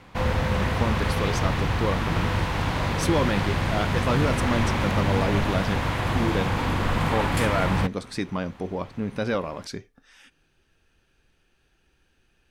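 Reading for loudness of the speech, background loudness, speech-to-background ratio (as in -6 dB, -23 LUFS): -29.5 LUFS, -25.5 LUFS, -4.0 dB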